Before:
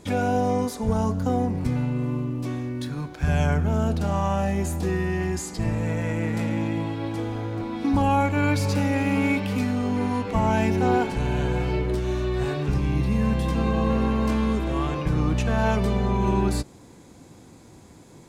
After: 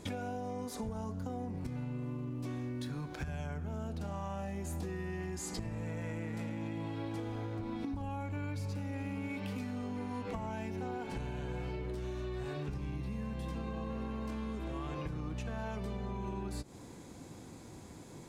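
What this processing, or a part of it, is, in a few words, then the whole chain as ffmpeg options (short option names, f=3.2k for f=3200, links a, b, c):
serial compression, peaks first: -filter_complex "[0:a]asettb=1/sr,asplit=3[a][b][c];[a]atrim=end=7.594[d];[b]atrim=start=7.59:end=9.29,asetpts=PTS-STARTPTS,afade=t=in:d=0.004:c=qsin,afade=t=out:st=1.696:d=0.004:c=qsin,lowshelf=f=160:g=9[e];[c]atrim=start=9.286[f];[d][e]acrossfade=d=0.004:c1=hsin:c2=qsin[g];[g][f]acrossfade=d=0.004:c1=qsin:c2=hsin,acompressor=threshold=-29dB:ratio=6,acompressor=threshold=-35dB:ratio=3,volume=-2dB"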